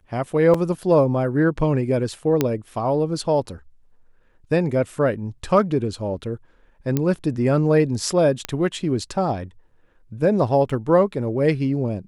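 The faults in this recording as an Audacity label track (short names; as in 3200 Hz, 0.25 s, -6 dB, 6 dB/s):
0.540000	0.540000	gap 4 ms
2.410000	2.410000	pop -5 dBFS
6.970000	6.970000	pop -8 dBFS
8.450000	8.450000	pop -8 dBFS
10.700000	10.700000	gap 4.8 ms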